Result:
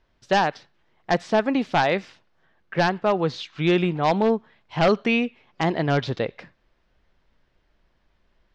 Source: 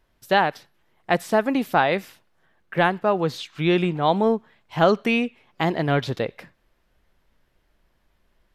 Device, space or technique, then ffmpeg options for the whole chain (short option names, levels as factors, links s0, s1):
synthesiser wavefolder: -af "aeval=exprs='0.282*(abs(mod(val(0)/0.282+3,4)-2)-1)':c=same,lowpass=f=6000:w=0.5412,lowpass=f=6000:w=1.3066"